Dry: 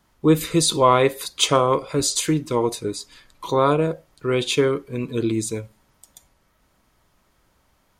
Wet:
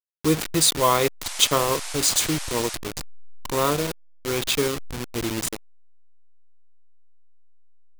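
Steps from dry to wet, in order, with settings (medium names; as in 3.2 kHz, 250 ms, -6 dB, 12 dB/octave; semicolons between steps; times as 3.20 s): send-on-delta sampling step -20.5 dBFS; treble shelf 2.1 kHz +8.5 dB; 1.23–2.74 s: band noise 630–10000 Hz -30 dBFS; trim -5 dB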